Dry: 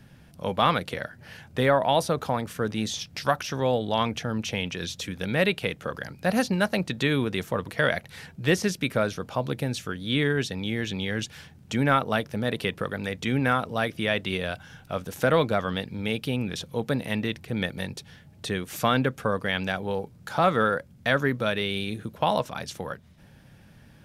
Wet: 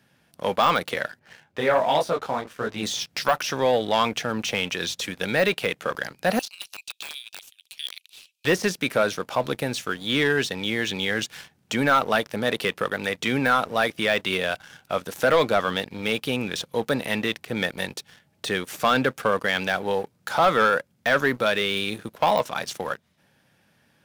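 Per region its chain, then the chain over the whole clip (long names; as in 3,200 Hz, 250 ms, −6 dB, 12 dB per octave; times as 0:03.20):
0:01.19–0:02.83: high-shelf EQ 5,400 Hz −12 dB + micro pitch shift up and down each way 44 cents
0:06.39–0:08.45: Chebyshev high-pass filter 2,500 Hz, order 6 + high-shelf EQ 3,500 Hz −3 dB + wrap-around overflow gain 26.5 dB
whole clip: high-pass filter 470 Hz 6 dB per octave; de-essing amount 80%; leveller curve on the samples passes 2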